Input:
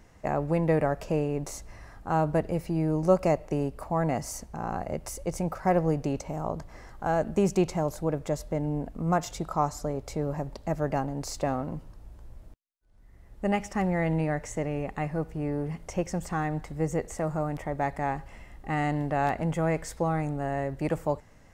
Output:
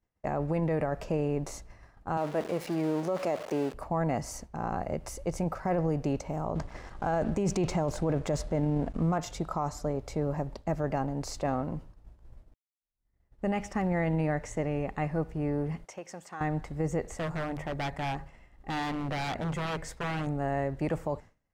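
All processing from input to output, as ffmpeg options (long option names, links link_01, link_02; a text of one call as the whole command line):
ffmpeg -i in.wav -filter_complex "[0:a]asettb=1/sr,asplit=3[link_01][link_02][link_03];[link_01]atrim=end=2.174[link_04];[link_02]atrim=start=2.17:end=3.74,asetpts=PTS-STARTPTS,afade=type=in:duration=0.004:curve=qsin,afade=type=out:start_time=1.566:duration=0.004:curve=qsin,aeval=exprs='val(0)+0.5*0.02*sgn(val(0))':channel_layout=same,highpass=270[link_05];[link_03]atrim=start=3.736[link_06];[link_04][link_05]acrossfade=duration=0.004:curve1=hsin:curve2=qsin[link_07];[link_07][link_06]acrossfade=duration=0.004:curve1=qsin:curve2=hsin,asettb=1/sr,asplit=3[link_08][link_09][link_10];[link_08]atrim=end=6.554[link_11];[link_09]atrim=start=6.55:end=9.18,asetpts=PTS-STARTPTS,afade=type=in:duration=0.004:curve=qsin,afade=type=out:start_time=2.626:duration=0.004:curve=qsin,lowpass=frequency=10000:width=0.5412,lowpass=frequency=10000:width=1.3066,acontrast=87,aeval=exprs='sgn(val(0))*max(abs(val(0))-0.00473,0)':channel_layout=same[link_12];[link_10]atrim=start=9.176[link_13];[link_11][link_12]acrossfade=duration=0.004:curve1=hsin:curve2=qsin[link_14];[link_14][link_13]acrossfade=duration=0.004:curve1=qsin:curve2=hsin,asettb=1/sr,asplit=3[link_15][link_16][link_17];[link_15]atrim=end=15.854[link_18];[link_16]atrim=start=15.85:end=16.41,asetpts=PTS-STARTPTS,afade=type=in:duration=0.004:curve=qsin,afade=type=out:start_time=0.556:duration=0.004:curve=qsin,highpass=180,lowshelf=frequency=420:gain=-11.5,acompressor=threshold=-34dB:ratio=6:attack=3.2:release=140:knee=1:detection=peak[link_19];[link_17]atrim=start=16.406[link_20];[link_18][link_19]acrossfade=duration=0.004:curve1=hsin:curve2=qsin[link_21];[link_21][link_20]acrossfade=duration=0.004:curve1=qsin:curve2=hsin,asettb=1/sr,asplit=3[link_22][link_23][link_24];[link_22]atrim=end=17.174[link_25];[link_23]atrim=start=17.17:end=20.27,asetpts=PTS-STARTPTS,afade=type=in:duration=0.004:curve=qsin,afade=type=out:start_time=3.096:duration=0.004:curve=qsin,bandreject=frequency=50:width_type=h:width=6,bandreject=frequency=100:width_type=h:width=6,bandreject=frequency=150:width_type=h:width=6,bandreject=frequency=200:width_type=h:width=6,bandreject=frequency=250:width_type=h:width=6,aeval=exprs='0.0447*(abs(mod(val(0)/0.0447+3,4)-2)-1)':channel_layout=same[link_26];[link_24]atrim=start=20.266[link_27];[link_25][link_26]acrossfade=duration=0.004:curve1=hsin:curve2=qsin[link_28];[link_28][link_27]acrossfade=duration=0.004:curve1=qsin:curve2=hsin,agate=range=-33dB:threshold=-38dB:ratio=3:detection=peak,highshelf=frequency=8200:gain=-9.5,alimiter=limit=-21dB:level=0:latency=1:release=12" out.wav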